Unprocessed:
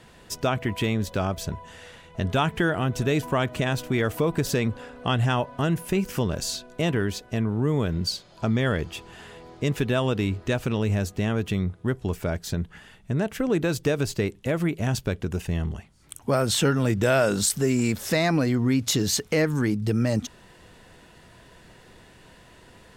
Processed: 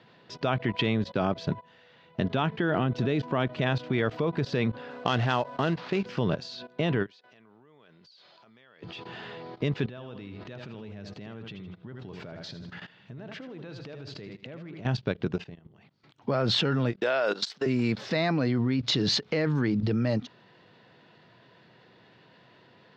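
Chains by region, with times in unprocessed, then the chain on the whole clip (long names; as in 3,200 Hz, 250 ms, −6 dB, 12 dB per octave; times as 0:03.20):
0:01.12–0:03.47: noise gate −41 dBFS, range −8 dB + dynamic equaliser 270 Hz, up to +4 dB, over −34 dBFS, Q 1
0:04.90–0:06.06: low-shelf EQ 210 Hz −9.5 dB + sample-rate reduction 9,400 Hz, jitter 20%
0:07.06–0:08.83: high-pass filter 1,300 Hz 6 dB per octave + downward compressor 16 to 1, threshold −46 dBFS
0:09.89–0:14.86: downward compressor 5 to 1, threshold −32 dBFS + repeating echo 79 ms, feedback 36%, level −9 dB + one half of a high-frequency compander encoder only
0:15.44–0:16.24: downward compressor 4 to 1, threshold −43 dBFS + amplitude modulation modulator 270 Hz, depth 25%
0:16.92–0:17.66: high-pass filter 450 Hz + noise gate −40 dBFS, range −17 dB
whole clip: elliptic band-pass filter 120–4,400 Hz, stop band 40 dB; output level in coarse steps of 16 dB; every ending faded ahead of time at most 470 dB per second; level +6.5 dB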